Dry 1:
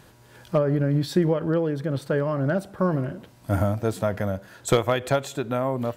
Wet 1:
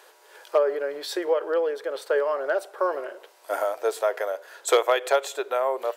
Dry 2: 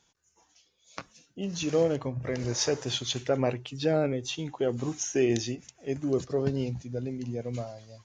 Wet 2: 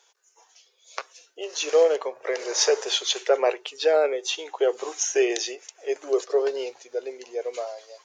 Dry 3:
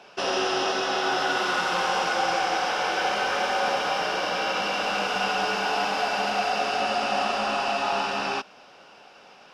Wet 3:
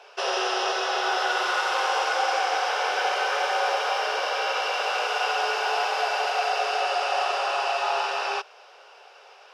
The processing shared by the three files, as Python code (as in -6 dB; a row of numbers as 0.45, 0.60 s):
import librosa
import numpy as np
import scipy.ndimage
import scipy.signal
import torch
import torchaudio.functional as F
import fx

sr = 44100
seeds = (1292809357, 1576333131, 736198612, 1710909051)

y = scipy.signal.sosfilt(scipy.signal.ellip(4, 1.0, 50, 410.0, 'highpass', fs=sr, output='sos'), x)
y = y * 10.0 ** (-26 / 20.0) / np.sqrt(np.mean(np.square(y)))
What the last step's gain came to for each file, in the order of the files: +3.0, +8.0, +1.0 dB